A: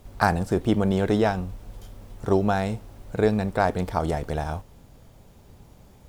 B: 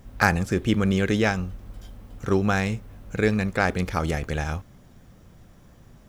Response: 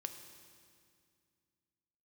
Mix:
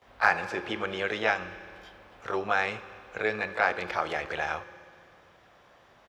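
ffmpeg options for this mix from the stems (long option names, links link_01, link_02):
-filter_complex "[0:a]highshelf=frequency=6300:gain=10.5,volume=-9dB,asplit=2[link_01][link_02];[1:a]adelay=18,volume=1dB,asplit=2[link_03][link_04];[link_04]volume=-3dB[link_05];[link_02]apad=whole_len=268993[link_06];[link_03][link_06]sidechaincompress=threshold=-35dB:ratio=8:attack=9.4:release=189[link_07];[2:a]atrim=start_sample=2205[link_08];[link_05][link_08]afir=irnorm=-1:irlink=0[link_09];[link_01][link_07][link_09]amix=inputs=3:normalize=0,highpass=42,acrossover=split=490 4300:gain=0.0708 1 0.0794[link_10][link_11][link_12];[link_10][link_11][link_12]amix=inputs=3:normalize=0"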